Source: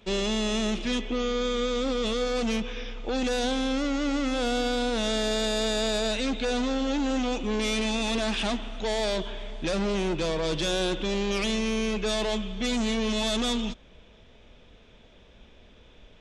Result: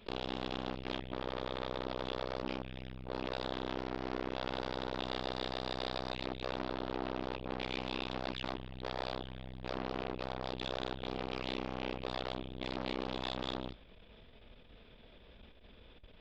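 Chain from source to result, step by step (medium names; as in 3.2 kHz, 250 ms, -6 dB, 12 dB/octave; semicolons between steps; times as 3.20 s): resampled via 11.025 kHz; transformer saturation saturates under 970 Hz; trim -2.5 dB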